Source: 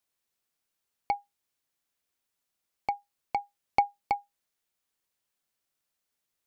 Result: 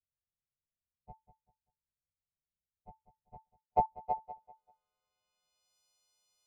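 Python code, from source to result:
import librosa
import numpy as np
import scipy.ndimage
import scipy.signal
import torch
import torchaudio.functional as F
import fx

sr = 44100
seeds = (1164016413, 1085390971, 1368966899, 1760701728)

y = fx.freq_snap(x, sr, grid_st=3)
y = fx.graphic_eq_31(y, sr, hz=(400, 1000, 1600), db=(3, -4, 6))
y = fx.filter_sweep_lowpass(y, sr, from_hz=150.0, to_hz=4800.0, start_s=3.27, end_s=5.78, q=0.89)
y = fx.fixed_phaser(y, sr, hz=730.0, stages=4)
y = fx.echo_feedback(y, sr, ms=195, feedback_pct=29, wet_db=-13.0)
y = fx.band_widen(y, sr, depth_pct=100, at=(3.35, 3.86))
y = F.gain(torch.from_numpy(y), 5.5).numpy()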